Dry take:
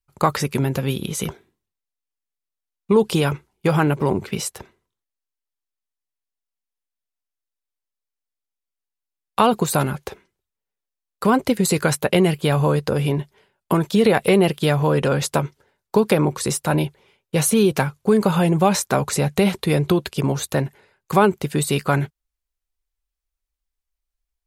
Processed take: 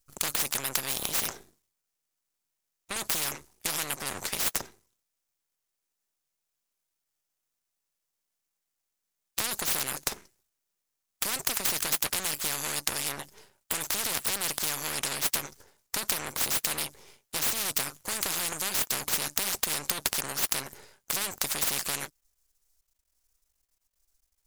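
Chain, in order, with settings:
high shelf with overshoot 4,200 Hz +11.5 dB, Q 1.5
half-wave rectification
every bin compressed towards the loudest bin 10 to 1
level −8.5 dB

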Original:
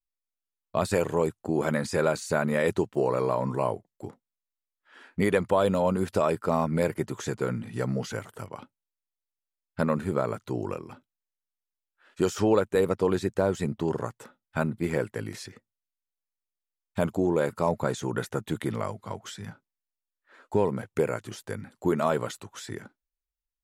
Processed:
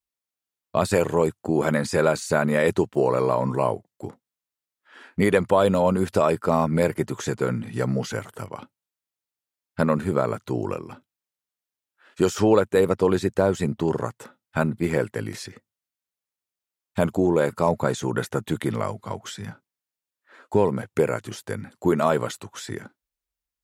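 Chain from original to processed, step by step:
high-pass filter 45 Hz
level +4.5 dB

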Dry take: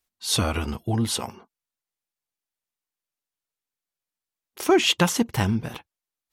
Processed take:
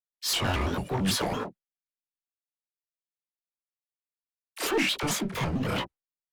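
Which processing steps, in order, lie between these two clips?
noise gate with hold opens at −44 dBFS
bass and treble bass −4 dB, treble −9 dB
downward compressor 16 to 1, threshold −31 dBFS, peak gain reduction 17.5 dB
transient designer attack −2 dB, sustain +8 dB
leveller curve on the samples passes 3
pitch-shifted copies added −4 semitones −16 dB
chorus effect 1.2 Hz, delay 20 ms, depth 4.9 ms
all-pass dispersion lows, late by 41 ms, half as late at 660 Hz
pitch modulation by a square or saw wave square 4.5 Hz, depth 250 cents
level +3.5 dB

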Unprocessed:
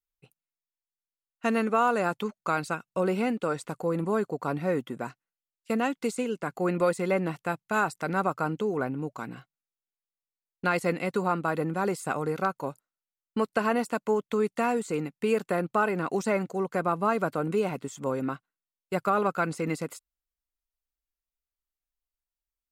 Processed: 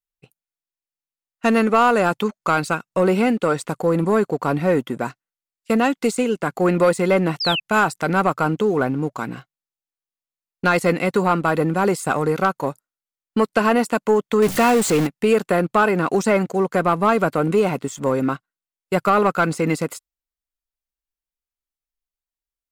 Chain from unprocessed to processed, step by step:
0:14.42–0:15.07: converter with a step at zero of −30 dBFS
noise reduction from a noise print of the clip's start 6 dB
leveller curve on the samples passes 1
0:07.40–0:07.60: sound drawn into the spectrogram fall 2,500–5,400 Hz −29 dBFS
level +6 dB

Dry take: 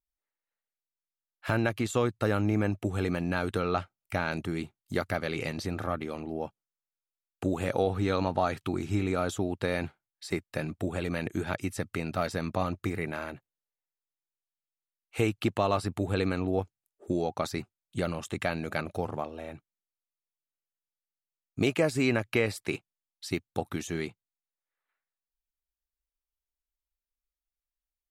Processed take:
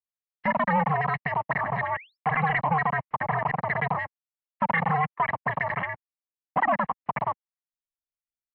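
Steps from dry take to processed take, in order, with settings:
comb filter 3.1 ms, depth 96%
leveller curve on the samples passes 3
sound drawn into the spectrogram rise, 0:06.34–0:07.15, 480–1,700 Hz −36 dBFS
change of speed 3.29×
single-sideband voice off tune −160 Hz 180–2,400 Hz
level −5.5 dB

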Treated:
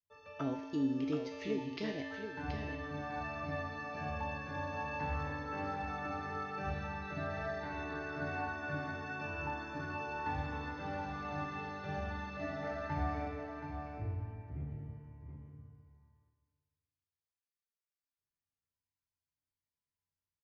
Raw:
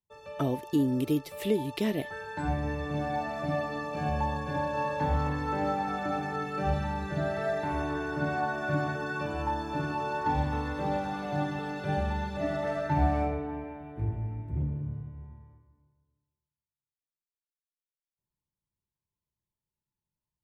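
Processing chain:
Chebyshev low-pass with heavy ripple 6,600 Hz, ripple 6 dB
tuned comb filter 91 Hz, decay 1.2 s, harmonics odd, mix 90%
single-tap delay 726 ms −8 dB
level +13 dB

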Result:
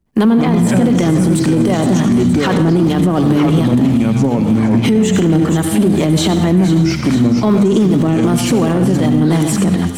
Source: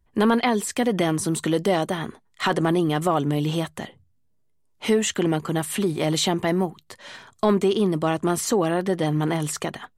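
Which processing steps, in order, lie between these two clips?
mu-law and A-law mismatch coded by A
two-band tremolo in antiphase 2.6 Hz, depth 50%, crossover 570 Hz
delay with pitch and tempo change per echo 138 ms, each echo −5 semitones, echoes 3, each echo −6 dB
parametric band 200 Hz +14.5 dB 1.6 octaves
mains-hum notches 50/100/150/200/250 Hz
in parallel at −7 dB: hard clipping −21.5 dBFS, distortion −4 dB
on the sum: delay with a high-pass on its return 469 ms, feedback 49%, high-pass 2,800 Hz, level −8 dB
convolution reverb RT60 0.70 s, pre-delay 67 ms, DRR 8 dB
boost into a limiter +15.5 dB
expander for the loud parts 1.5 to 1, over −23 dBFS
level −3.5 dB

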